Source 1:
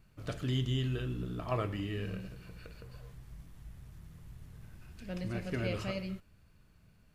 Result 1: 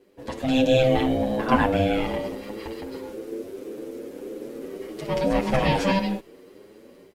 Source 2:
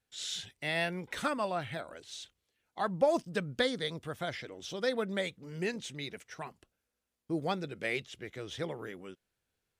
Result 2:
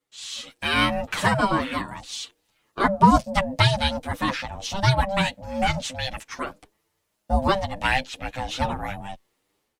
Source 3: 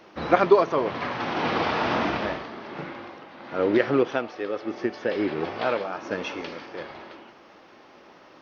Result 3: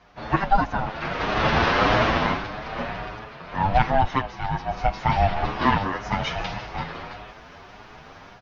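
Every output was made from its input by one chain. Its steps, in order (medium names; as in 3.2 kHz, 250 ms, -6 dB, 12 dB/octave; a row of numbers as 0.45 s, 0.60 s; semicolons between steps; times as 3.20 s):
level rider gain up to 10.5 dB; ring modulator 390 Hz; endless flanger 8.1 ms +1.7 Hz; normalise loudness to -24 LUFS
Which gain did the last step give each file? +9.0 dB, +7.0 dB, +2.0 dB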